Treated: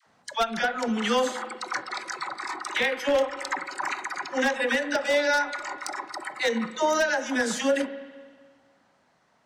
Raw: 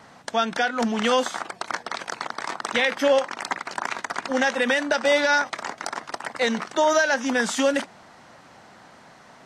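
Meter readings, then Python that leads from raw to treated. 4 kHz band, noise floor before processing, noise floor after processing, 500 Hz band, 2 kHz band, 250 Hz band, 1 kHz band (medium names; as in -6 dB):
-3.5 dB, -50 dBFS, -65 dBFS, -3.0 dB, -3.0 dB, -3.0 dB, -3.0 dB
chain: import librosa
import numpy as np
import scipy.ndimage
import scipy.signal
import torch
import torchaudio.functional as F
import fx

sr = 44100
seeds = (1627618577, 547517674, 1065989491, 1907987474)

p1 = fx.noise_reduce_blind(x, sr, reduce_db=14)
p2 = fx.rider(p1, sr, range_db=5, speed_s=0.5)
p3 = p1 + (p2 * librosa.db_to_amplitude(-1.5))
p4 = fx.dispersion(p3, sr, late='lows', ms=68.0, hz=650.0)
p5 = 10.0 ** (-8.0 / 20.0) * (np.abs((p4 / 10.0 ** (-8.0 / 20.0) + 3.0) % 4.0 - 2.0) - 1.0)
p6 = fx.rev_spring(p5, sr, rt60_s=1.7, pass_ms=(36, 49), chirp_ms=45, drr_db=11.5)
y = p6 * librosa.db_to_amplitude(-7.5)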